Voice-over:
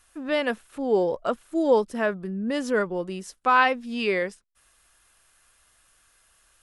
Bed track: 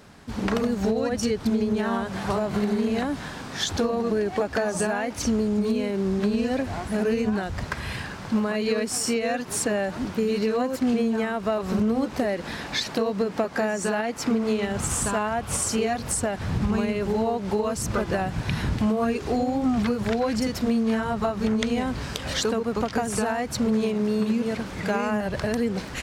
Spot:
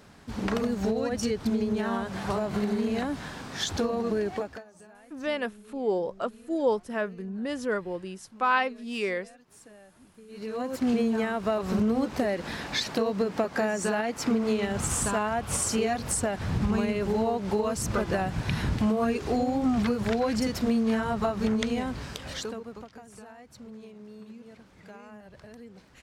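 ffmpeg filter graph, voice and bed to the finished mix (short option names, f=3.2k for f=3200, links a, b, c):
-filter_complex "[0:a]adelay=4950,volume=-5dB[a];[1:a]volume=21.5dB,afade=t=out:st=4.27:d=0.37:silence=0.0668344,afade=t=in:st=10.28:d=0.64:silence=0.0562341,afade=t=out:st=21.43:d=1.49:silence=0.1[b];[a][b]amix=inputs=2:normalize=0"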